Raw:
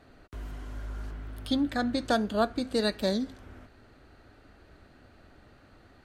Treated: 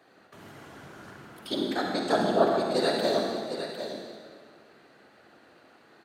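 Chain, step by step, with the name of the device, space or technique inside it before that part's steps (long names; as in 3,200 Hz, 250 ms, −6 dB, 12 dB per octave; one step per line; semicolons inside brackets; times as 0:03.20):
0:02.12–0:02.60: tilt shelving filter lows +6 dB, about 940 Hz
whispering ghost (random phases in short frames; high-pass filter 310 Hz 12 dB per octave; convolution reverb RT60 1.8 s, pre-delay 39 ms, DRR 0.5 dB)
single-tap delay 754 ms −9 dB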